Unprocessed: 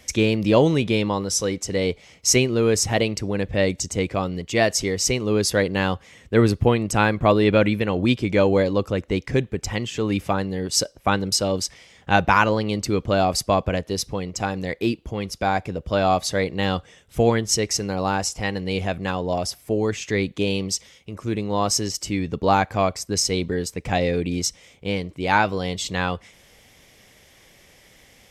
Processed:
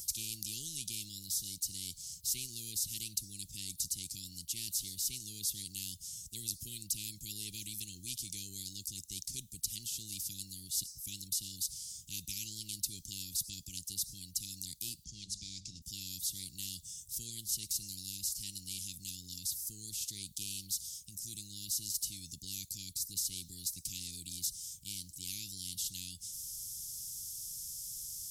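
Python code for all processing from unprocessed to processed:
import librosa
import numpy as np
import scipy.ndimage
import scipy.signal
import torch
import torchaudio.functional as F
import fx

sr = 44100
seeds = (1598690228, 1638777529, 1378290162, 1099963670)

y = fx.chain(x, sr, fx.law_mismatch(coded='mu'),
    fx.lowpass(hz=5700.0, slope=24),
    fx.hum_notches(base_hz=50, count=10), at=(15.04, 15.82))
y = scipy.signal.sosfilt(scipy.signal.cheby2(4, 80, [580.0, 1500.0], 'bandstop', fs=sr, output='sos'), y)
y = F.preemphasis(torch.from_numpy(y), 0.9).numpy()
y = fx.spectral_comp(y, sr, ratio=4.0)
y = y * librosa.db_to_amplitude(-7.0)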